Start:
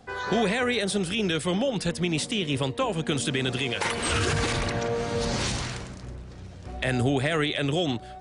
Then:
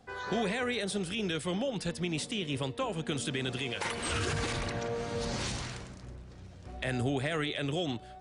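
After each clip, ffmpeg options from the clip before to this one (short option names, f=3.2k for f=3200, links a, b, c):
-af "bandreject=f=437.6:t=h:w=4,bandreject=f=875.2:t=h:w=4,bandreject=f=1.3128k:t=h:w=4,bandreject=f=1.7504k:t=h:w=4,bandreject=f=2.188k:t=h:w=4,bandreject=f=2.6256k:t=h:w=4,bandreject=f=3.0632k:t=h:w=4,bandreject=f=3.5008k:t=h:w=4,bandreject=f=3.9384k:t=h:w=4,bandreject=f=4.376k:t=h:w=4,bandreject=f=4.8136k:t=h:w=4,bandreject=f=5.2512k:t=h:w=4,bandreject=f=5.6888k:t=h:w=4,volume=-7dB"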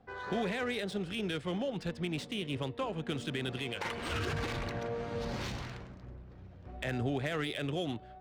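-af "adynamicsmooth=sensitivity=7:basefreq=2.5k,volume=-2dB"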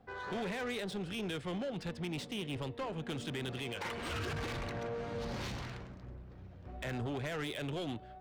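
-af "asoftclip=type=tanh:threshold=-33dB"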